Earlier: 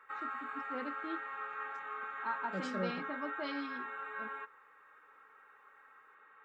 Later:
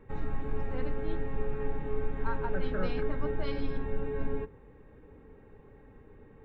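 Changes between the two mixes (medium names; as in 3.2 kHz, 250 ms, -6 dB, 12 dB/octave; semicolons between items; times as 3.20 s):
second voice: add resonant low-pass 1.5 kHz, resonance Q 4.1; background: remove resonant high-pass 1.3 kHz, resonance Q 6.4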